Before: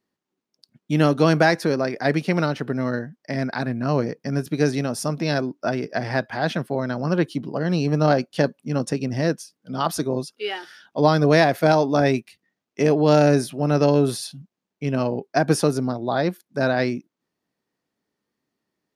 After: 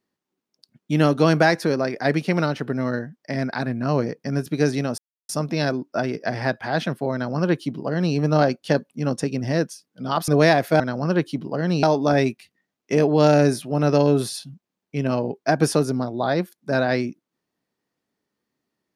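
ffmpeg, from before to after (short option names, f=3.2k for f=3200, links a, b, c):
-filter_complex "[0:a]asplit=5[a][b][c][d][e];[a]atrim=end=4.98,asetpts=PTS-STARTPTS,afade=t=out:st=4.976:d=0.004:c=hsin,apad=pad_dur=0.31[f];[b]atrim=start=4.98:end=9.972,asetpts=PTS-STARTPTS,afade=t=in:d=0.004:c=hsin[g];[c]atrim=start=11.188:end=11.712[h];[d]atrim=start=6.818:end=7.852[i];[e]atrim=start=11.708[j];[f][g]concat=n=2:v=0:a=1[k];[k][h]acrossfade=d=0.004:c1=hsin:c2=hsin[l];[l][i]acrossfade=d=0.004:c1=hsin:c2=hsin[m];[m][j]acrossfade=d=0.004:c1=hsin:c2=hsin"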